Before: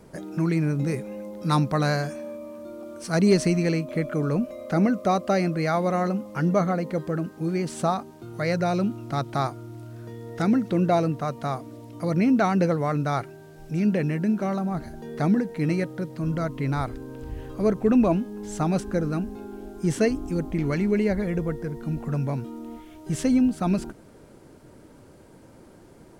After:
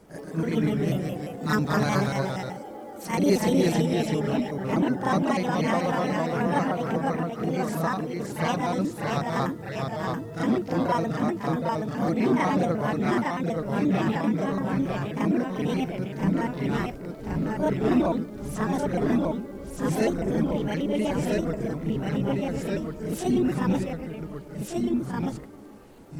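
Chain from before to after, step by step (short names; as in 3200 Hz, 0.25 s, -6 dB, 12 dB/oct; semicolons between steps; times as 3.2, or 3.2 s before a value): trilling pitch shifter +6 st, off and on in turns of 61 ms; echoes that change speed 0.118 s, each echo -1 st, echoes 2; reverse echo 37 ms -6.5 dB; gain -3.5 dB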